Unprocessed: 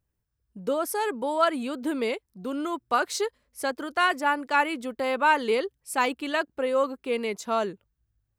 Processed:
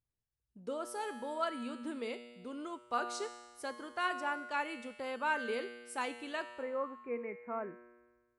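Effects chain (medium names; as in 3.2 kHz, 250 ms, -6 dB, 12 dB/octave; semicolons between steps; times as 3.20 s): steep low-pass 11 kHz 96 dB/octave, from 6.61 s 2.4 kHz; feedback comb 120 Hz, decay 1.4 s, harmonics all, mix 80%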